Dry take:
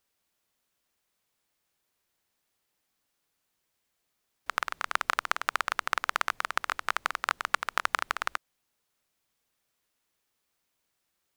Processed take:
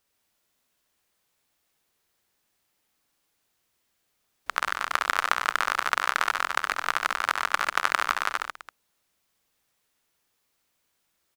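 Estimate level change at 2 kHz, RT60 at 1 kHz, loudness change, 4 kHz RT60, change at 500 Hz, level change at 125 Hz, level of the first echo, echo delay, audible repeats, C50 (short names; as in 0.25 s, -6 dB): +4.5 dB, none, +4.5 dB, none, +4.5 dB, n/a, -7.0 dB, 67 ms, 4, none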